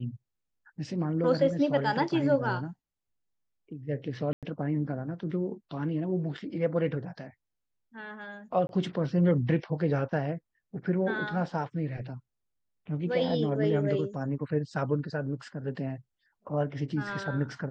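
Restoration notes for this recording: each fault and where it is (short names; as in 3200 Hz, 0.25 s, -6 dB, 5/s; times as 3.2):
4.33–4.43 gap 97 ms
8.67–8.69 gap 21 ms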